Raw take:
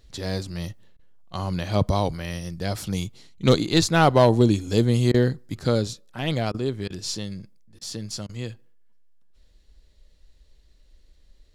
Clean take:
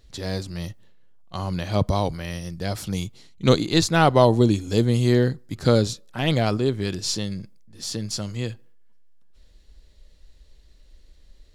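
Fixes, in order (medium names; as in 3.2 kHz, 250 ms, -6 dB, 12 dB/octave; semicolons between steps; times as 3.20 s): clip repair -7.5 dBFS; interpolate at 0.97/5.12/6.52/6.88/7.79/8.27 s, 21 ms; trim 0 dB, from 5.59 s +4 dB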